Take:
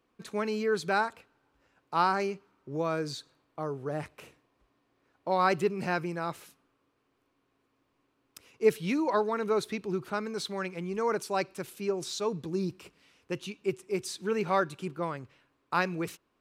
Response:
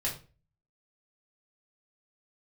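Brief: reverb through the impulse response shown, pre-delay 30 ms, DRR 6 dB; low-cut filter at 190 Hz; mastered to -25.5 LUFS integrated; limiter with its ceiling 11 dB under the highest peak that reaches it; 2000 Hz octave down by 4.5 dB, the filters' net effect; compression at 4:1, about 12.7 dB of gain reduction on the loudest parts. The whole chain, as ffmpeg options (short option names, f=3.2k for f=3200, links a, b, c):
-filter_complex "[0:a]highpass=190,equalizer=f=2k:t=o:g=-6.5,acompressor=threshold=-33dB:ratio=4,alimiter=level_in=8.5dB:limit=-24dB:level=0:latency=1,volume=-8.5dB,asplit=2[a][b];[1:a]atrim=start_sample=2205,adelay=30[c];[b][c]afir=irnorm=-1:irlink=0,volume=-11dB[d];[a][d]amix=inputs=2:normalize=0,volume=16.5dB"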